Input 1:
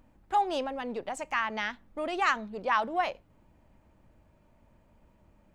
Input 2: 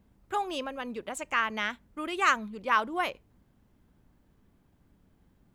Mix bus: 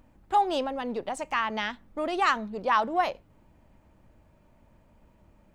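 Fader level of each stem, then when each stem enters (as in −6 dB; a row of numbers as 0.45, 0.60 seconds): +2.5, −11.0 decibels; 0.00, 0.00 seconds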